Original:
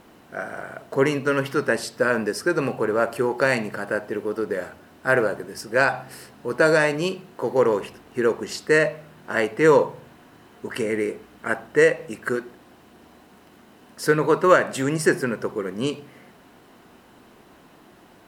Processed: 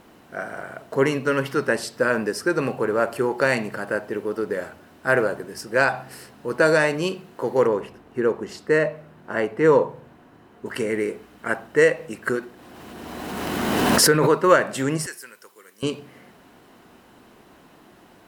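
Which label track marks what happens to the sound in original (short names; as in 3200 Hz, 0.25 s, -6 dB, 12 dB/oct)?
7.670000	10.660000	high shelf 2300 Hz -10 dB
12.270000	14.320000	backwards sustainer at most 22 dB/s
15.060000	15.830000	differentiator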